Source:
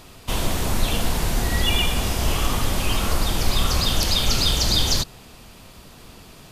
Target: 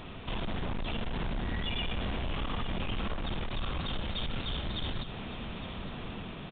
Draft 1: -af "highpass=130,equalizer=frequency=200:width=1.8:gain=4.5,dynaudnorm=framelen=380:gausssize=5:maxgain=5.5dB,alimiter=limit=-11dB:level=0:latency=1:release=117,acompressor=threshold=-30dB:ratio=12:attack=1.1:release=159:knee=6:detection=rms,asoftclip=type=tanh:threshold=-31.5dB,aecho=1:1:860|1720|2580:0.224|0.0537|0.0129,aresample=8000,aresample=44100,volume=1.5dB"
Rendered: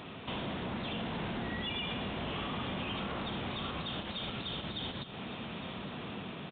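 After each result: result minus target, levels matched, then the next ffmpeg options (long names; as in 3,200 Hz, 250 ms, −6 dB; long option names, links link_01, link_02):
downward compressor: peak gain reduction +7 dB; 125 Hz band −3.0 dB
-af "highpass=130,equalizer=frequency=200:width=1.8:gain=4.5,dynaudnorm=framelen=380:gausssize=5:maxgain=5.5dB,alimiter=limit=-11dB:level=0:latency=1:release=117,acompressor=threshold=-21.5dB:ratio=12:attack=1.1:release=159:knee=6:detection=rms,asoftclip=type=tanh:threshold=-31.5dB,aecho=1:1:860|1720|2580:0.224|0.0537|0.0129,aresample=8000,aresample=44100,volume=1.5dB"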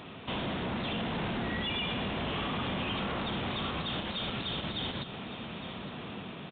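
125 Hz band −3.5 dB
-af "equalizer=frequency=200:width=1.8:gain=4.5,dynaudnorm=framelen=380:gausssize=5:maxgain=5.5dB,alimiter=limit=-11dB:level=0:latency=1:release=117,acompressor=threshold=-21.5dB:ratio=12:attack=1.1:release=159:knee=6:detection=rms,asoftclip=type=tanh:threshold=-31.5dB,aecho=1:1:860|1720|2580:0.224|0.0537|0.0129,aresample=8000,aresample=44100,volume=1.5dB"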